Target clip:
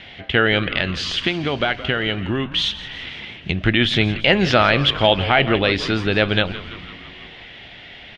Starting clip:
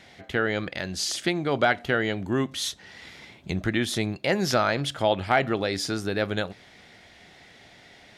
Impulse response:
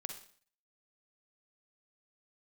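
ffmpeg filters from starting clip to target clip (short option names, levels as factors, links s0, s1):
-filter_complex "[0:a]lowshelf=f=74:g=11.5,asettb=1/sr,asplit=3[s0][s1][s2];[s0]atrim=end=0.964[s3];[s1]atrim=start=0.96:end=3.64,asetpts=PTS-STARTPTS,afade=t=in:d=0.004:c=qsin,afade=t=out:st=2.676:d=0.004:c=qsin,acompressor=threshold=0.0501:ratio=4[s4];[s2]atrim=start=3.636[s5];[s3][s4]acrossfade=d=0.004:c1=hsin:c2=qsin[s6];[s6][s5]acrossfade=d=0.004:c1=qsin:c2=hsin,lowpass=f=3000:t=q:w=3.7,asplit=8[s7][s8][s9][s10][s11][s12][s13][s14];[s8]adelay=168,afreqshift=-95,volume=0.178[s15];[s9]adelay=336,afreqshift=-190,volume=0.116[s16];[s10]adelay=504,afreqshift=-285,volume=0.075[s17];[s11]adelay=672,afreqshift=-380,volume=0.049[s18];[s12]adelay=840,afreqshift=-475,volume=0.0316[s19];[s13]adelay=1008,afreqshift=-570,volume=0.0207[s20];[s14]adelay=1176,afreqshift=-665,volume=0.0133[s21];[s7][s15][s16][s17][s18][s19][s20][s21]amix=inputs=8:normalize=0,alimiter=level_in=2.37:limit=0.891:release=50:level=0:latency=1,volume=0.891"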